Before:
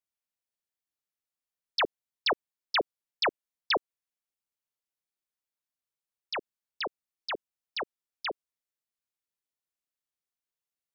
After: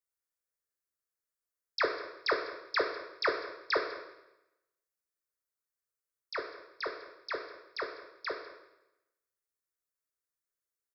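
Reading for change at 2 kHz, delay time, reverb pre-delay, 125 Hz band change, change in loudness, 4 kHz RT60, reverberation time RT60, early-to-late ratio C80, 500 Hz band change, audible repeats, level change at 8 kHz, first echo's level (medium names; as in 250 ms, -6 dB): -0.5 dB, 200 ms, 12 ms, no reading, -2.5 dB, 0.85 s, 0.95 s, 8.5 dB, +0.5 dB, 1, no reading, -19.0 dB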